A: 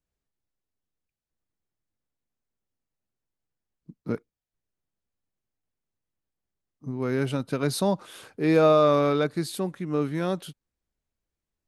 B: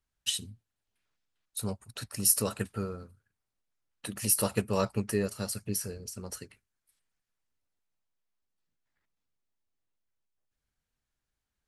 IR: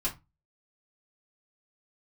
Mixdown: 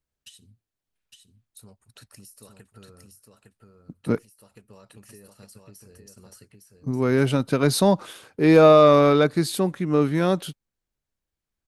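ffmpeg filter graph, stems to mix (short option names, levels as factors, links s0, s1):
-filter_complex "[0:a]agate=range=0.398:threshold=0.00708:ratio=16:detection=peak,acontrast=44,volume=1.06,asplit=2[s0][s1];[1:a]alimiter=limit=0.1:level=0:latency=1:release=272,acompressor=threshold=0.0112:ratio=12,volume=0.501,asplit=2[s2][s3];[s3]volume=0.596[s4];[s1]apad=whole_len=514985[s5];[s2][s5]sidechaincompress=threshold=0.0282:ratio=4:attack=11:release=390[s6];[s4]aecho=0:1:859:1[s7];[s0][s6][s7]amix=inputs=3:normalize=0"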